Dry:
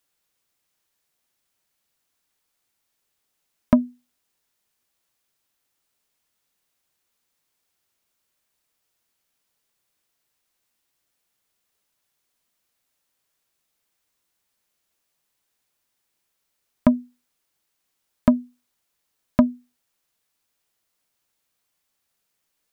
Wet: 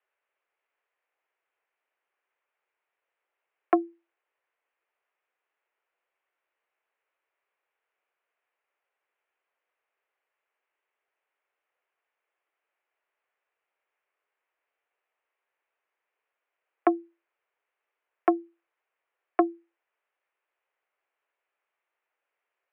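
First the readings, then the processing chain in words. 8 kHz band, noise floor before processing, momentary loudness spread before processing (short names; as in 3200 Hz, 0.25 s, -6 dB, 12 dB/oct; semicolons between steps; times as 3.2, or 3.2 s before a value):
n/a, -77 dBFS, 5 LU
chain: mistuned SSB +92 Hz 300–2500 Hz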